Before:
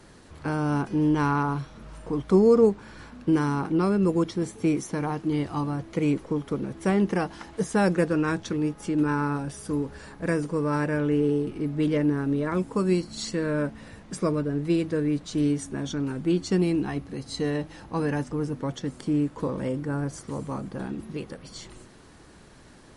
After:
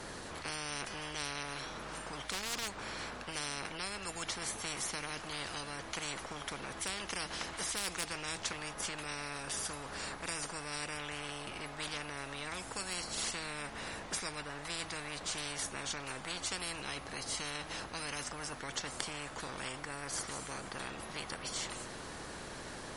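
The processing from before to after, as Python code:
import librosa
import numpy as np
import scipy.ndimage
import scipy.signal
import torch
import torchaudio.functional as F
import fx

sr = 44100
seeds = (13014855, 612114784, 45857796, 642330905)

y = 10.0 ** (-13.5 / 20.0) * (np.abs((x / 10.0 ** (-13.5 / 20.0) + 3.0) % 4.0 - 2.0) - 1.0)
y = fx.spectral_comp(y, sr, ratio=10.0)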